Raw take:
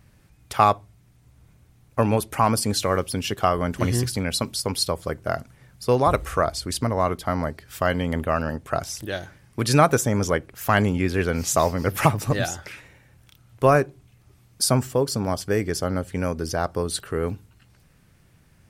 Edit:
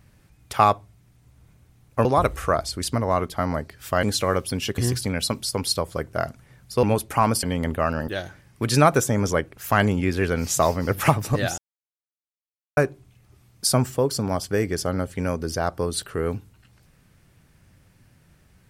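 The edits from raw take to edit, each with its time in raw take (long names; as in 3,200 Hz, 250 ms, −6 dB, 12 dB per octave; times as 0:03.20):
0:02.05–0:02.65: swap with 0:05.94–0:07.92
0:03.40–0:03.89: remove
0:08.57–0:09.05: remove
0:12.55–0:13.74: silence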